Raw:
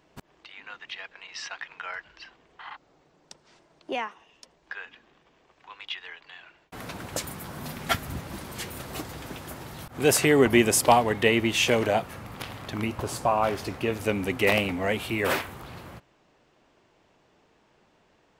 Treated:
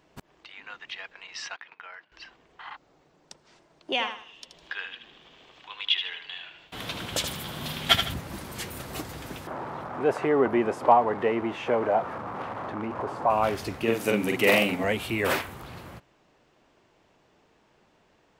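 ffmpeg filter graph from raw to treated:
ffmpeg -i in.wav -filter_complex "[0:a]asettb=1/sr,asplit=3[link_01][link_02][link_03];[link_01]atrim=end=1.564[link_04];[link_02]atrim=start=1.56:end=2.12,asetpts=PTS-STARTPTS,afade=type=in:duration=0.004:curve=qsin,afade=type=out:start_time=0.556:duration=0.004:curve=qsin,agate=range=-14dB:threshold=-50dB:ratio=16:release=100:detection=peak,highpass=170,lowpass=4600,acompressor=threshold=-39dB:ratio=10:attack=3.2:release=140:knee=1:detection=peak[link_05];[link_03]atrim=start=2.116[link_06];[link_04][link_05]acrossfade=duration=0.004:curve1=hsin:curve2=qsin[link_07];[link_07][link_06]acrossfade=duration=0.004:curve1=qsin:curve2=hsin,asettb=1/sr,asplit=3[link_08][link_09][link_10];[link_08]atrim=end=3.924[link_11];[link_09]atrim=start=3.92:end=8.14,asetpts=PTS-STARTPTS,afade=type=in:duration=0.004:curve=qsin,afade=type=out:start_time=4.216:duration=0.004:curve=qsin,equalizer=frequency=3300:width_type=o:width=0.72:gain=13,acompressor=mode=upward:threshold=-46dB:ratio=2.5:attack=3.2:release=140:knee=2.83:detection=peak,aecho=1:1:78|156|234|312:0.422|0.131|0.0405|0.0126,atrim=end_sample=186102[link_12];[link_10]atrim=start=8.136[link_13];[link_11][link_12]acrossfade=duration=0.004:curve1=hsin:curve2=qsin[link_14];[link_14][link_13]acrossfade=duration=0.004:curve1=qsin:curve2=hsin,asettb=1/sr,asplit=3[link_15][link_16][link_17];[link_15]atrim=end=9.474[link_18];[link_16]atrim=start=9.47:end=13.3,asetpts=PTS-STARTPTS,afade=type=in:duration=0.004:curve=qsin,afade=type=out:start_time=3.826:duration=0.004:curve=qsin,aeval=exprs='val(0)+0.5*0.0473*sgn(val(0))':channel_layout=same,bandpass=frequency=1100:width_type=q:width=1.4,tiltshelf=frequency=1100:gain=9.5[link_19];[link_17]atrim=start=13.296[link_20];[link_18][link_19]acrossfade=duration=0.004:curve1=hsin:curve2=qsin[link_21];[link_21][link_20]acrossfade=duration=0.004:curve1=qsin:curve2=hsin,asettb=1/sr,asplit=3[link_22][link_23][link_24];[link_22]atrim=end=13.834[link_25];[link_23]atrim=start=13.83:end=14.84,asetpts=PTS-STARTPTS,afade=type=in:duration=0.004:curve=qsin,afade=type=out:start_time=1.006:duration=0.004:curve=qsin,highpass=frequency=130:width=0.5412,highpass=frequency=130:width=1.3066,highshelf=frequency=9100:gain=4.5,asplit=2[link_26][link_27];[link_27]adelay=44,volume=-2.5dB[link_28];[link_26][link_28]amix=inputs=2:normalize=0,atrim=end_sample=44541[link_29];[link_24]atrim=start=14.836[link_30];[link_25][link_29]acrossfade=duration=0.004:curve1=hsin:curve2=qsin[link_31];[link_31][link_30]acrossfade=duration=0.004:curve1=qsin:curve2=hsin" out.wav

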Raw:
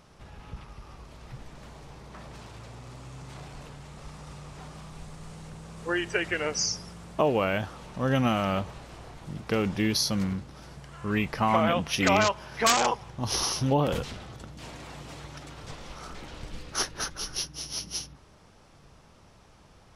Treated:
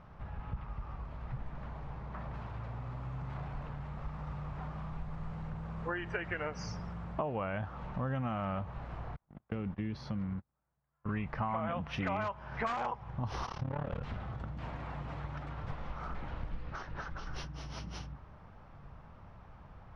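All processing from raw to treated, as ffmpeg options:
ffmpeg -i in.wav -filter_complex "[0:a]asettb=1/sr,asplit=3[link_01][link_02][link_03];[link_01]atrim=end=9.164[link_04];[link_02]atrim=start=9.16:end=11.09,asetpts=PTS-STARTPTS,afade=type=in:duration=0.004:curve=qsin,afade=type=out:start_time=1.926:duration=0.004:curve=qsin,agate=range=-38dB:threshold=-34dB:ratio=16:release=100:detection=peak,bass=frequency=250:gain=-5,treble=frequency=4000:gain=-13,acrossover=split=360|3000[link_05][link_06][link_07];[link_06]acompressor=threshold=-51dB:ratio=2:attack=3.2:release=140:knee=2.83:detection=peak[link_08];[link_05][link_08][link_07]amix=inputs=3:normalize=0[link_09];[link_03]atrim=start=11.086[link_10];[link_04][link_09]acrossfade=duration=0.004:curve1=hsin:curve2=qsin[link_11];[link_11][link_10]acrossfade=duration=0.004:curve1=qsin:curve2=hsin,asettb=1/sr,asplit=3[link_12][link_13][link_14];[link_12]atrim=end=13.464[link_15];[link_13]atrim=start=13.46:end=14.03,asetpts=PTS-STARTPTS,afade=type=in:duration=0.004:curve=qsin,afade=type=out:start_time=0.566:duration=0.004:curve=qsin,lowpass=6800,asoftclip=type=hard:threshold=-25.5dB,tremolo=f=36:d=0.919[link_16];[link_14]atrim=start=14.026[link_17];[link_15][link_16]acrossfade=duration=0.004:curve1=hsin:curve2=qsin[link_18];[link_18][link_17]acrossfade=duration=0.004:curve1=qsin:curve2=hsin,asettb=1/sr,asplit=3[link_19][link_20][link_21];[link_19]atrim=end=16.564[link_22];[link_20]atrim=start=16.56:end=17.27,asetpts=PTS-STARTPTS,afade=type=in:duration=0.004:curve=qsin,afade=type=out:start_time=0.706:duration=0.004:curve=qsin,lowpass=frequency=6800:width=0.5412,lowpass=frequency=6800:width=1.3066,acompressor=threshold=-35dB:ratio=10:attack=3.2:release=140:knee=1:detection=peak[link_23];[link_21]atrim=start=17.266[link_24];[link_22][link_23]acrossfade=duration=0.004:curve1=hsin:curve2=qsin[link_25];[link_25][link_24]acrossfade=duration=0.004:curve1=qsin:curve2=hsin,lowpass=1300,equalizer=frequency=370:width=0.84:gain=-10.5,acompressor=threshold=-40dB:ratio=4,volume=6dB" out.wav

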